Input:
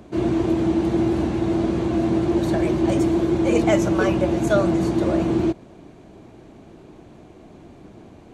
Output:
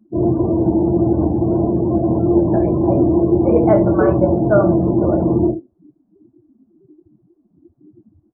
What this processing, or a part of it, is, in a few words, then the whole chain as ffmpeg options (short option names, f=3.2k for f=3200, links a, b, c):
slapback doubling: -filter_complex "[0:a]asplit=3[a][b][c];[b]adelay=23,volume=-4.5dB[d];[c]adelay=76,volume=-11dB[e];[a][d][e]amix=inputs=3:normalize=0,highshelf=f=4.2k:g=3.5,afftdn=nr=35:nf=-27,lowpass=f=1.3k:w=0.5412,lowpass=f=1.3k:w=1.3066,volume=4.5dB"